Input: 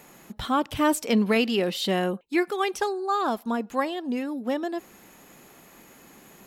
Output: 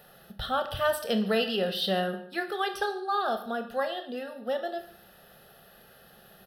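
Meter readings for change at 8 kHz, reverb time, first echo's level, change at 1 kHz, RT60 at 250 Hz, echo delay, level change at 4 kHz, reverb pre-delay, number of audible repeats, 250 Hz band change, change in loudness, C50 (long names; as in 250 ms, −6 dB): −9.0 dB, 0.55 s, −21.0 dB, −3.0 dB, 0.55 s, 146 ms, 0.0 dB, 25 ms, 1, −8.5 dB, −4.0 dB, 10.5 dB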